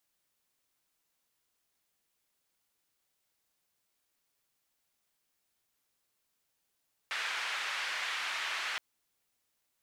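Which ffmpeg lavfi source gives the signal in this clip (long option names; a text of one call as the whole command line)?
ffmpeg -f lavfi -i "anoisesrc=color=white:duration=1.67:sample_rate=44100:seed=1,highpass=frequency=1500,lowpass=frequency=2100,volume=-17.2dB" out.wav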